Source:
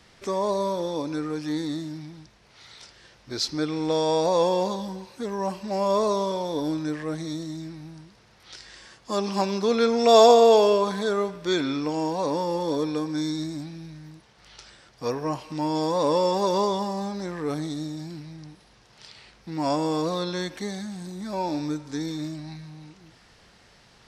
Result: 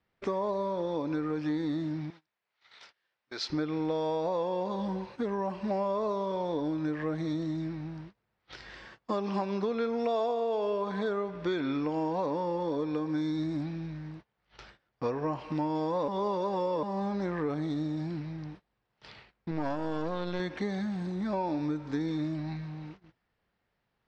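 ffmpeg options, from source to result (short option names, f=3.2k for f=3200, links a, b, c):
-filter_complex "[0:a]asettb=1/sr,asplit=3[a][b][c];[a]atrim=end=2.104[d];[b]atrim=start=2.1:end=3.5,asetpts=PTS-STARTPTS,afade=t=in:d=0.004:c=qsin,afade=t=out:st=1.396:d=0.004:c=qsin,highpass=f=1.3k:p=1[e];[c]atrim=start=3.496[f];[d][e]acrossfade=d=0.004:c1=hsin:c2=qsin[g];[g][f]acrossfade=d=0.004:c1=qsin:c2=hsin,asettb=1/sr,asplit=3[h][i][j];[h]atrim=end=19.514[k];[i]atrim=start=19.51:end=20.4,asetpts=PTS-STARTPTS,afade=t=in:d=0.004:c=qsin,afade=t=out:st=0.886:d=0.004:c=qsin,aeval=exprs='if(lt(val(0),0),0.251*val(0),val(0))':c=same[l];[j]atrim=start=20.396[m];[k][l]acrossfade=d=0.004:c1=hsin:c2=qsin[n];[n][m]acrossfade=d=0.004:c1=qsin:c2=hsin,asplit=3[o][p][q];[o]atrim=end=16.082[r];[p]atrim=start=16.078:end=16.832,asetpts=PTS-STARTPTS,areverse[s];[q]atrim=start=16.828[t];[r][s]acrossfade=d=0.004:c1=hsin:c2=hsin[u];[u][t]acrossfade=d=0.004:c1=hsin:c2=hsin,agate=range=-25dB:threshold=-48dB:ratio=16:detection=peak,lowpass=2.6k,acompressor=threshold=-30dB:ratio=10,volume=2.5dB"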